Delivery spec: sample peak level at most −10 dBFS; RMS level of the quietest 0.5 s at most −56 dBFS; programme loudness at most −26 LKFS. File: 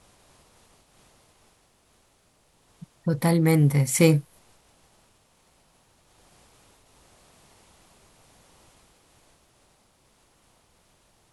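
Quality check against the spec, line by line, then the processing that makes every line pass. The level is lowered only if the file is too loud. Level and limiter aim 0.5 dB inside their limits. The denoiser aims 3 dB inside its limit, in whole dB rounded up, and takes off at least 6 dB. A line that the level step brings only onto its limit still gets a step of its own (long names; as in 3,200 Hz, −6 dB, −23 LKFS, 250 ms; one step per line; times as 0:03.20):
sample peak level −4.5 dBFS: out of spec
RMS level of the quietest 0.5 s −64 dBFS: in spec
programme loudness −21.5 LKFS: out of spec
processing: level −5 dB
brickwall limiter −10.5 dBFS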